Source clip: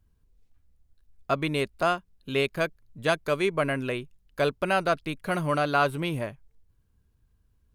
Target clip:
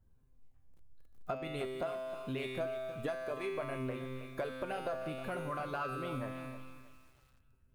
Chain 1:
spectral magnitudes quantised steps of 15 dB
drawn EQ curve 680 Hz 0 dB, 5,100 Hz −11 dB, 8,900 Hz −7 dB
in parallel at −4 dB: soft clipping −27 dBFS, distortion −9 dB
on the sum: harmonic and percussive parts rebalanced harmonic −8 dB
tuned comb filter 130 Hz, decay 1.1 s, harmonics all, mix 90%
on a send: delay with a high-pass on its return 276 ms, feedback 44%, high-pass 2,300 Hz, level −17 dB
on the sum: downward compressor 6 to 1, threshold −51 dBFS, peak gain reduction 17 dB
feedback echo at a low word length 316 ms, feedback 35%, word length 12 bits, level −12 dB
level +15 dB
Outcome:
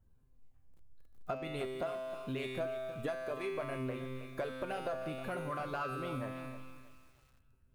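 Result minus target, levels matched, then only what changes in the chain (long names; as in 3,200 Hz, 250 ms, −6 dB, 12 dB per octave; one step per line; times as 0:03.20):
soft clipping: distortion +6 dB
change: soft clipping −21 dBFS, distortion −15 dB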